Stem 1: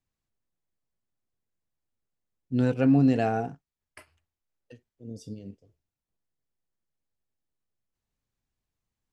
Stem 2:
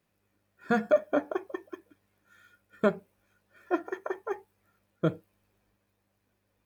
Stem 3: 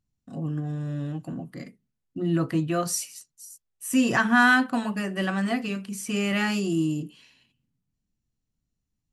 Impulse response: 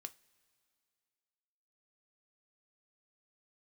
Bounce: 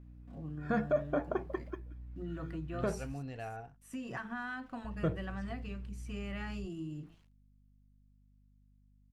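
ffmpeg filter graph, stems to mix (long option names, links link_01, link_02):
-filter_complex "[0:a]equalizer=frequency=240:width_type=o:width=2.9:gain=-15,adelay=200,volume=-8dB[link_01];[1:a]alimiter=limit=-21dB:level=0:latency=1:release=31,aeval=exprs='val(0)+0.00251*(sin(2*PI*60*n/s)+sin(2*PI*2*60*n/s)/2+sin(2*PI*3*60*n/s)/3+sin(2*PI*4*60*n/s)/4+sin(2*PI*5*60*n/s)/5)':channel_layout=same,volume=0.5dB,asplit=3[link_02][link_03][link_04];[link_02]atrim=end=3.13,asetpts=PTS-STARTPTS,afade=type=out:start_time=3.126:duration=0.004:curve=hsin[link_05];[link_03]atrim=start=3.13:end=4.84,asetpts=PTS-STARTPTS,volume=0[link_06];[link_04]atrim=start=4.84,asetpts=PTS-STARTPTS,afade=type=in:duration=0.004:curve=hsin[link_07];[link_05][link_06][link_07]concat=n=3:v=0:a=1[link_08];[2:a]bandreject=frequency=55.39:width_type=h:width=4,bandreject=frequency=110.78:width_type=h:width=4,bandreject=frequency=166.17:width_type=h:width=4,bandreject=frequency=221.56:width_type=h:width=4,bandreject=frequency=276.95:width_type=h:width=4,bandreject=frequency=332.34:width_type=h:width=4,bandreject=frequency=387.73:width_type=h:width=4,bandreject=frequency=443.12:width_type=h:width=4,bandreject=frequency=498.51:width_type=h:width=4,acompressor=threshold=-23dB:ratio=10,aeval=exprs='val(0)*gte(abs(val(0)),0.00422)':channel_layout=same,volume=-12dB[link_09];[link_01][link_08][link_09]amix=inputs=3:normalize=0,lowpass=frequency=2000:poles=1,asubboost=boost=5:cutoff=94,aeval=exprs='val(0)+0.000631*(sin(2*PI*50*n/s)+sin(2*PI*2*50*n/s)/2+sin(2*PI*3*50*n/s)/3+sin(2*PI*4*50*n/s)/4+sin(2*PI*5*50*n/s)/5)':channel_layout=same"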